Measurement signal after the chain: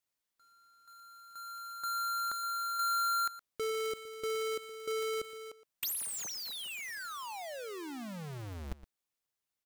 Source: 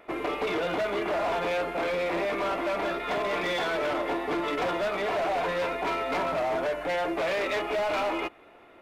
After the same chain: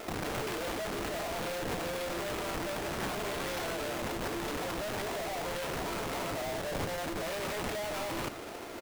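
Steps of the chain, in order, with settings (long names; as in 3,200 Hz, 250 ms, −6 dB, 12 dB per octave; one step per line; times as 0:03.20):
each half-wave held at its own peak
in parallel at +0.5 dB: brickwall limiter −32 dBFS
on the sum: wrap-around overflow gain 29.5 dB
slap from a distant wall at 20 metres, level −15 dB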